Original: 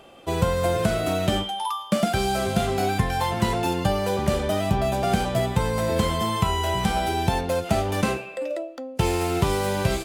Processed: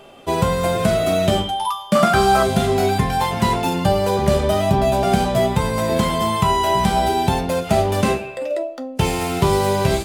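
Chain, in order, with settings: 1.95–2.43 s: peaking EQ 1.2 kHz +14.5 dB 0.82 oct; reverberation RT60 0.35 s, pre-delay 5 ms, DRR 5.5 dB; trim +3.5 dB

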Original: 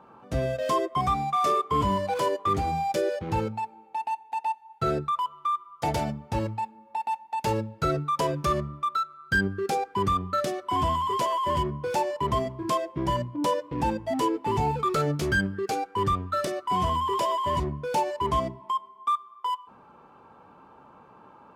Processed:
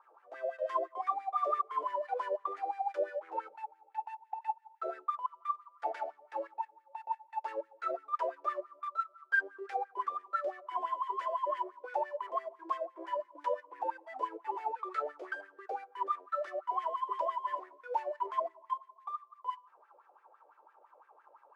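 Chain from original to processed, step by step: CVSD coder 64 kbps; wah-wah 5.9 Hz 540–1900 Hz, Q 5.1; elliptic high-pass 330 Hz, stop band 50 dB

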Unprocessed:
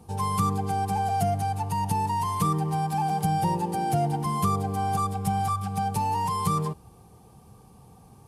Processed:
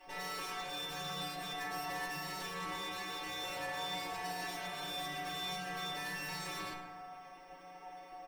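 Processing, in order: sorted samples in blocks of 16 samples; low-pass 1.7 kHz 6 dB/octave; spectral gate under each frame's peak -15 dB weak; comb 6.9 ms, depth 79%; in parallel at +3 dB: compression, threshold -42 dBFS, peak gain reduction 12.5 dB; on the sum: peak limiter -22.5 dBFS, peak gain reduction 6 dB; valve stage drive 37 dB, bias 0.4; inharmonic resonator 180 Hz, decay 0.44 s, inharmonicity 0.002; FDN reverb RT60 2.3 s, low-frequency decay 0.75×, high-frequency decay 0.3×, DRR 1 dB; trim +14 dB

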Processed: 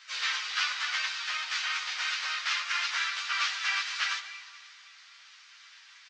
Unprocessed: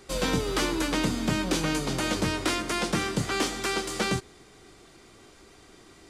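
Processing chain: CVSD coder 32 kbps; Schroeder reverb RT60 2.1 s, combs from 28 ms, DRR 10 dB; harmony voices -12 st -5 dB, -3 st -3 dB, +3 st -10 dB; high-pass 1.4 kHz 24 dB/octave; three-phase chorus; trim +4.5 dB

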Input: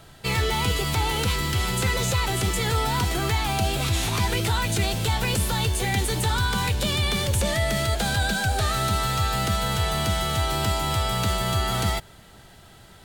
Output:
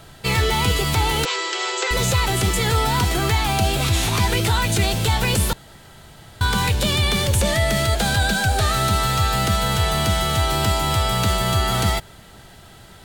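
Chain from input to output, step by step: 1.25–1.91 s: brick-wall FIR band-pass 330–8100 Hz; 5.53–6.41 s: room tone; trim +4.5 dB

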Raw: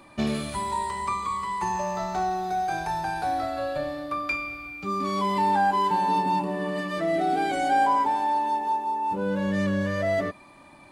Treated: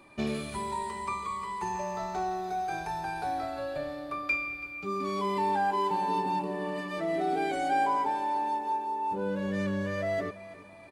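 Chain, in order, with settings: small resonant body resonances 410/2400 Hz, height 7 dB, ringing for 35 ms; on a send: feedback delay 333 ms, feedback 47%, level -16.5 dB; on the sum: trim -6 dB

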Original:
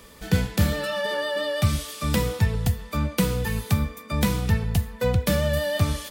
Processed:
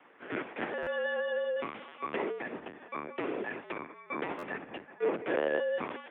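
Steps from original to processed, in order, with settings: LPC vocoder at 8 kHz pitch kept; mistuned SSB -53 Hz 350–2700 Hz; buffer glitch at 0.82/4.38 s, samples 512, times 3; trim -5 dB

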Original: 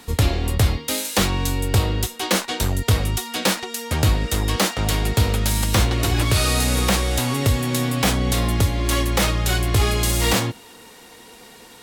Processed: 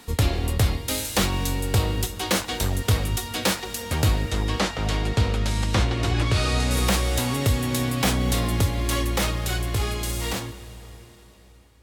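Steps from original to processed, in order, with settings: fade out at the end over 3.25 s; 4.22–6.71 s: distance through air 72 m; reverberation RT60 4.5 s, pre-delay 119 ms, DRR 14.5 dB; trim -3 dB

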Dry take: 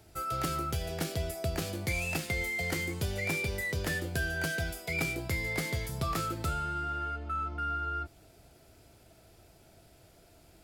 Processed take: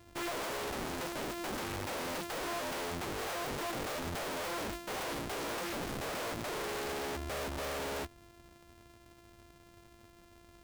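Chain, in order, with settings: sorted samples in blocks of 128 samples; integer overflow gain 33 dB

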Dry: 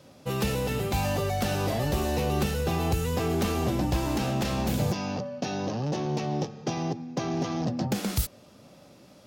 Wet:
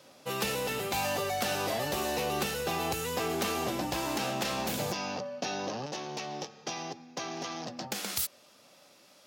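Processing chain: high-pass 680 Hz 6 dB/octave, from 5.86 s 1.4 kHz; trim +1.5 dB

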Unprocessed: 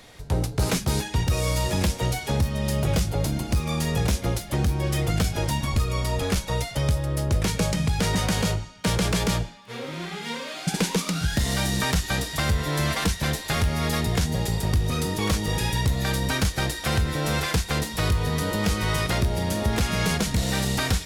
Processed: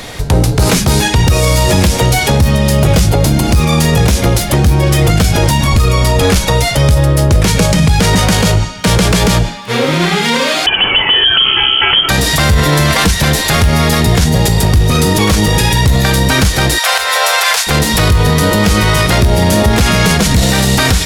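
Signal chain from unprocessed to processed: 10.66–12.09 s: frequency inversion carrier 3.2 kHz; 16.78–17.67 s: inverse Chebyshev high-pass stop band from 310 Hz, stop band 40 dB; loudness maximiser +22.5 dB; trim -1 dB

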